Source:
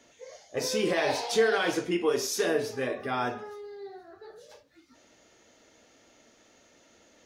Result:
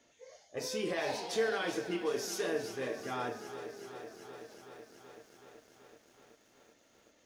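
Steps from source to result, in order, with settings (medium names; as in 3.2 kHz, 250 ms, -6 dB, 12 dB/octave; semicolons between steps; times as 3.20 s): bit-crushed delay 378 ms, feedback 80%, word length 9-bit, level -13 dB; trim -8 dB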